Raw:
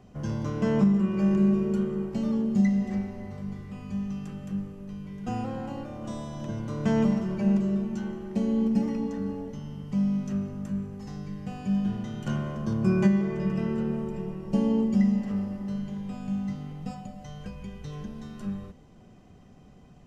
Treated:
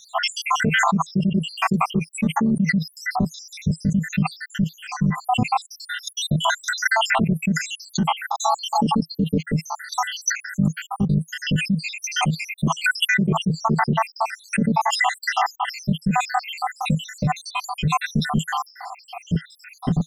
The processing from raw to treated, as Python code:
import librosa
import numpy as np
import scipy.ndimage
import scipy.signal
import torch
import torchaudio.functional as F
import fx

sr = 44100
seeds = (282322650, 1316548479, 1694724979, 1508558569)

y = fx.spec_dropout(x, sr, seeds[0], share_pct=84)
y = fx.peak_eq(y, sr, hz=160.0, db=13.0, octaves=0.67)
y = fx.env_flatten(y, sr, amount_pct=100)
y = y * librosa.db_to_amplitude(-6.0)